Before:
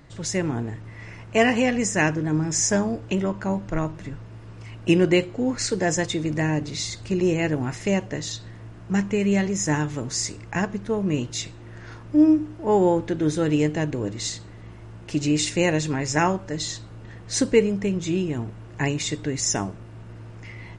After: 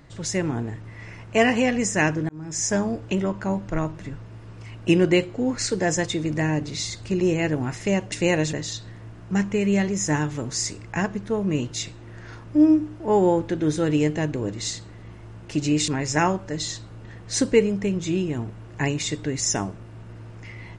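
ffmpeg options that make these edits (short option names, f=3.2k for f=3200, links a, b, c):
-filter_complex "[0:a]asplit=5[a][b][c][d][e];[a]atrim=end=2.29,asetpts=PTS-STARTPTS,afade=t=out:st=2.286:d=0.004:c=hsin[f];[b]atrim=start=2.29:end=8.122,asetpts=PTS-STARTPTS,afade=t=in:d=0.71:c=qsin[g];[c]atrim=start=15.468:end=15.882[h];[d]atrim=start=8.118:end=15.472[i];[e]atrim=start=15.878[j];[f][g]concat=n=2:v=0:a=1[k];[k][h]acrossfade=d=0.004:c1=hsin:c2=hsin[l];[l][i]acrossfade=d=0.004:c1=hsin:c2=hsin[m];[m][j]acrossfade=d=0.004:c1=hsin:c2=hsin"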